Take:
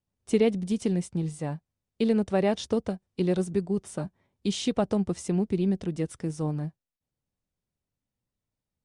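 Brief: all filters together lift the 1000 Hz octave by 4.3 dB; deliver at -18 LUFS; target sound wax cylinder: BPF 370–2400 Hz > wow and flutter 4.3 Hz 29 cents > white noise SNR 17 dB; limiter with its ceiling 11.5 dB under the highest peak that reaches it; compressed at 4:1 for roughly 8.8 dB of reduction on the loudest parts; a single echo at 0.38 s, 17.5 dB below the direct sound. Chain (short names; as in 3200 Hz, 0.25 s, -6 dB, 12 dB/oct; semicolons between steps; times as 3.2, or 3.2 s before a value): bell 1000 Hz +6.5 dB; compressor 4:1, threshold -28 dBFS; limiter -29 dBFS; BPF 370–2400 Hz; echo 0.38 s -17.5 dB; wow and flutter 4.3 Hz 29 cents; white noise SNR 17 dB; gain +26.5 dB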